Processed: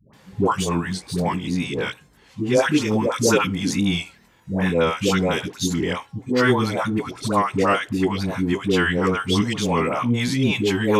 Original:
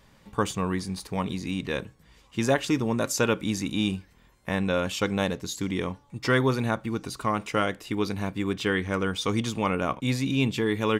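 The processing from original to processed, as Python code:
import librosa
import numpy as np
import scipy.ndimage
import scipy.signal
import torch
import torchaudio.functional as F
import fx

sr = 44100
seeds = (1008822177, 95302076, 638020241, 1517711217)

y = fx.pitch_ramps(x, sr, semitones=-2.0, every_ms=448)
y = scipy.signal.sosfilt(scipy.signal.butter(2, 93.0, 'highpass', fs=sr, output='sos'), y)
y = fx.dispersion(y, sr, late='highs', ms=135.0, hz=620.0)
y = y * 10.0 ** (7.5 / 20.0)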